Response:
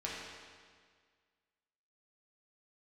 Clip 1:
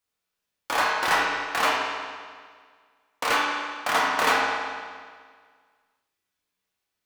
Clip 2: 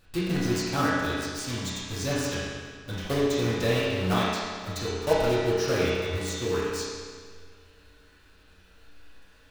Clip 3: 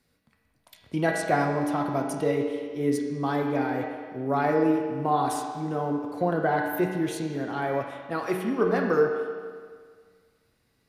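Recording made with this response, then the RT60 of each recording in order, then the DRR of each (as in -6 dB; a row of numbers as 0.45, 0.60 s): 1; 1.8, 1.8, 1.8 s; -6.0, -10.0, 0.5 dB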